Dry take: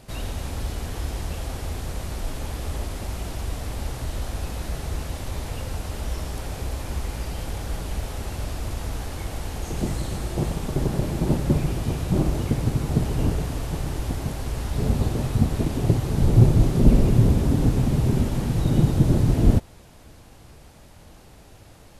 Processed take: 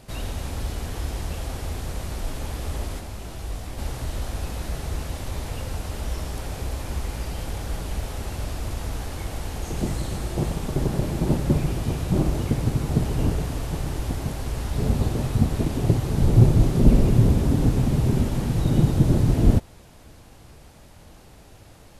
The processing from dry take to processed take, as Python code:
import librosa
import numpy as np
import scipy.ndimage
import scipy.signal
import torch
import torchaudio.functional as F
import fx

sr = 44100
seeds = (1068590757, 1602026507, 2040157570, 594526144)

y = fx.detune_double(x, sr, cents=fx.line((2.99, 38.0), (3.77, 53.0)), at=(2.99, 3.77), fade=0.02)